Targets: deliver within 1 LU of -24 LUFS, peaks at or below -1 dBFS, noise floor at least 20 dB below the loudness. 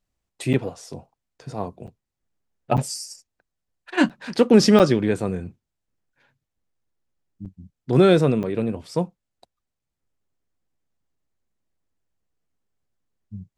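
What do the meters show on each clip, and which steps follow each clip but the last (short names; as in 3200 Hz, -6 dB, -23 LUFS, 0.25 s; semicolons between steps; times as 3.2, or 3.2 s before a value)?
dropouts 7; longest dropout 7.4 ms; loudness -21.0 LUFS; peak -2.5 dBFS; loudness target -24.0 LUFS
-> interpolate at 0.53/1.87/2.77/4.09/4.79/7.45/8.43, 7.4 ms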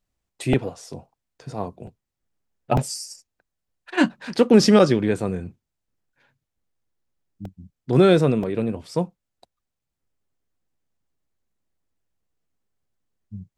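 dropouts 0; loudness -21.0 LUFS; peak -2.5 dBFS; loudness target -24.0 LUFS
-> gain -3 dB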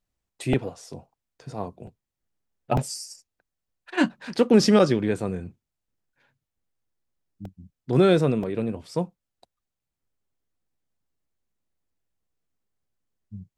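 loudness -24.0 LUFS; peak -5.5 dBFS; noise floor -85 dBFS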